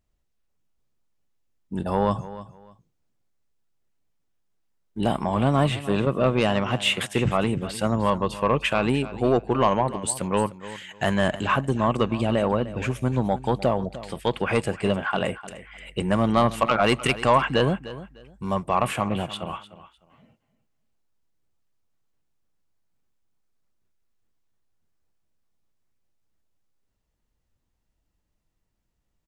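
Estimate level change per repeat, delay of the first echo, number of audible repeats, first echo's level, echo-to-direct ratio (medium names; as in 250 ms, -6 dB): -13.0 dB, 302 ms, 2, -15.5 dB, -15.5 dB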